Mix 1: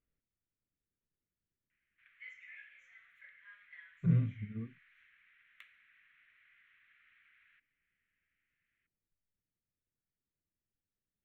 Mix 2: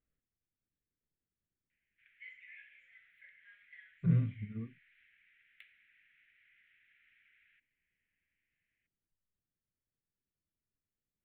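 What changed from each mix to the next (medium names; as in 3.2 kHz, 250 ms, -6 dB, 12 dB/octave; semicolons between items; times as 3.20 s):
background: add static phaser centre 2.6 kHz, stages 4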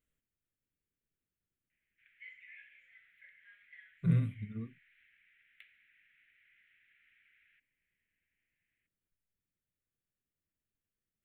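speech: remove distance through air 460 m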